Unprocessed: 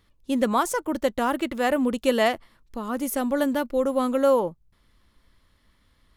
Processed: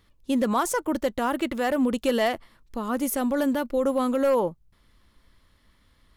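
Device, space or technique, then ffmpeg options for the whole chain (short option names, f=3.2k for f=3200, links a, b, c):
clipper into limiter: -af "asoftclip=type=hard:threshold=-13.5dB,alimiter=limit=-17dB:level=0:latency=1:release=46,volume=1.5dB"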